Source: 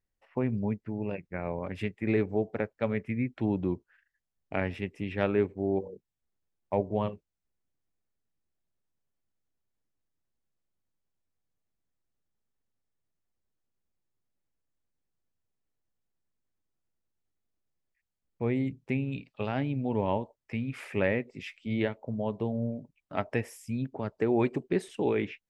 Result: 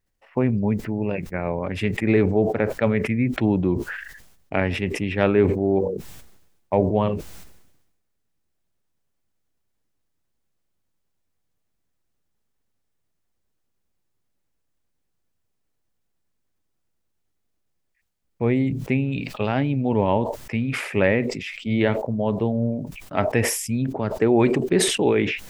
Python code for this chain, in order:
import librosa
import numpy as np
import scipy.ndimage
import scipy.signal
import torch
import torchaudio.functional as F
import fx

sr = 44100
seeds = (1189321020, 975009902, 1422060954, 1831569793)

y = fx.sustainer(x, sr, db_per_s=54.0)
y = F.gain(torch.from_numpy(y), 8.0).numpy()